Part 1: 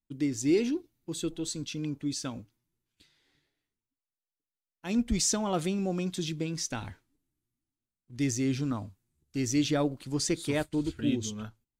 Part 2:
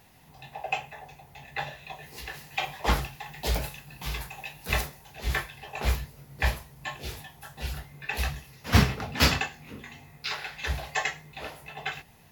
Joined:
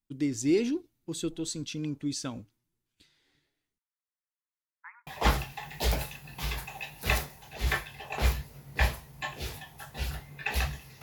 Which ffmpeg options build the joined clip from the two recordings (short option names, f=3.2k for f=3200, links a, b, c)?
-filter_complex "[0:a]asettb=1/sr,asplit=3[a][b][c];[a]atrim=end=3.784[d];[b]atrim=start=3.78:end=5.07,asetpts=PTS-STARTPTS,afade=t=in:d=0.004:c=qsin,afade=t=out:st=1.286:d=0.004:c=qsin,asuperpass=centerf=1400:order=20:qfactor=1.1[e];[c]atrim=start=5.066[f];[d][e]acrossfade=d=0.004:c1=hsin:c2=qsin[g];[g][f]acrossfade=d=0.004:c1=qsin:c2=hsin,apad=whole_dur=11.02,atrim=end=11.02,atrim=end=5.072[h];[1:a]atrim=start=2.698:end=8.65[i];[h][i]acrossfade=d=0.004:c1=hsin:c2=hsin"